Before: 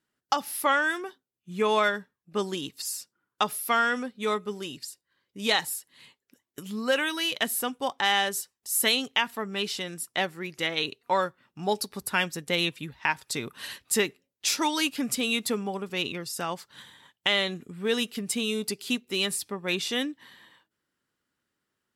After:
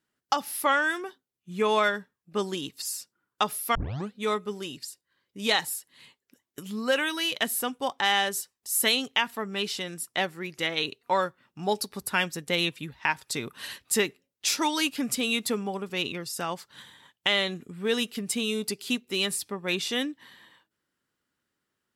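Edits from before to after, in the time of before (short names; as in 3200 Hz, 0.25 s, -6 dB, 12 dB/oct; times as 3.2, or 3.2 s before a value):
3.75 tape start 0.38 s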